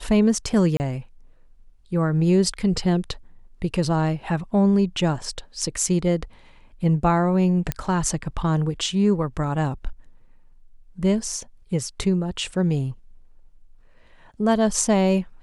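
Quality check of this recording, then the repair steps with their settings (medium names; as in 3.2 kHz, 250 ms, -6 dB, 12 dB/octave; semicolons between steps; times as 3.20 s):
0.77–0.80 s: dropout 29 ms
7.72 s: pop -9 dBFS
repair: de-click; interpolate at 0.77 s, 29 ms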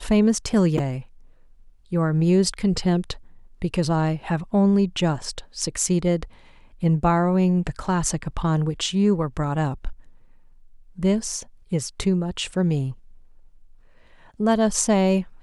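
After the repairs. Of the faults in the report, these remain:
nothing left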